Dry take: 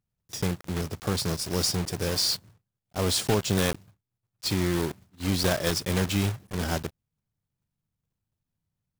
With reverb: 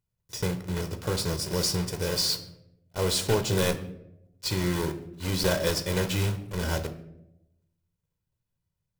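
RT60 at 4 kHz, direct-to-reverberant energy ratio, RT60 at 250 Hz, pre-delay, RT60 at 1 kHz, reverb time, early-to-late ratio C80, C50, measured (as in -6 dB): 0.50 s, 7.5 dB, 1.1 s, 13 ms, 0.65 s, 0.85 s, 15.5 dB, 12.5 dB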